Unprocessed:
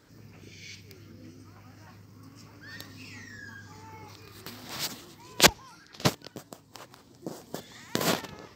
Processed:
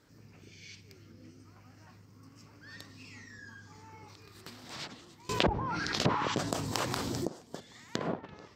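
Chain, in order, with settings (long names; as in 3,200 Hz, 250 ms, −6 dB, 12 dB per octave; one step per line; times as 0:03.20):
0:06.11–0:06.32: healed spectral selection 820–8,100 Hz both
treble cut that deepens with the level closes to 850 Hz, closed at −24 dBFS
0:05.29–0:07.27: envelope flattener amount 70%
level −5 dB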